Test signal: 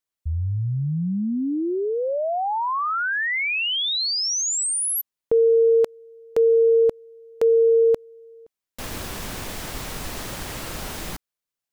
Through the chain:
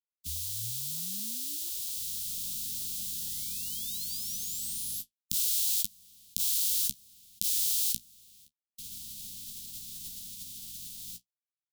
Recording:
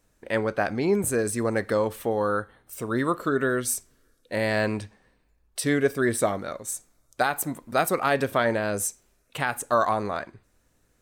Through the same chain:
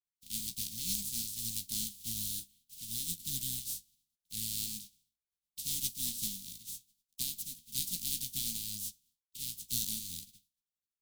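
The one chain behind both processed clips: spectral contrast reduction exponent 0.16; expander -51 dBFS; flange 0.68 Hz, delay 9.4 ms, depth 9.1 ms, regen +36%; elliptic band-stop 220–3400 Hz, stop band 60 dB; dynamic bell 2.6 kHz, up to -4 dB, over -45 dBFS, Q 0.85; trim -5.5 dB

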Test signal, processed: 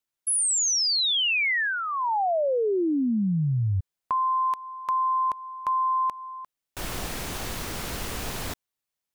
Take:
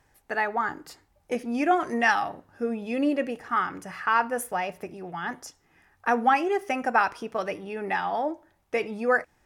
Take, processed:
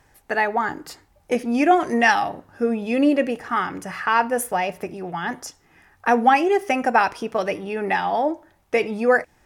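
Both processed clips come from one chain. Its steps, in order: dynamic bell 1.3 kHz, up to -6 dB, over -38 dBFS, Q 2.1; trim +7 dB

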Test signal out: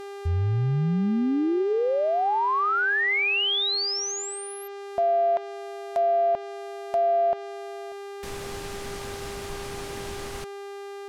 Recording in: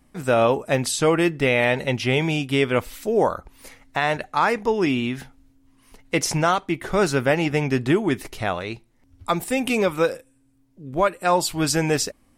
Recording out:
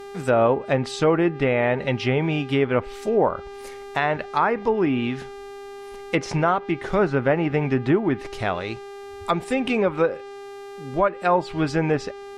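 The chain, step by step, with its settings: mains buzz 400 Hz, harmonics 36, -38 dBFS -8 dB/octave; low-pass that closes with the level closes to 1.7 kHz, closed at -16 dBFS

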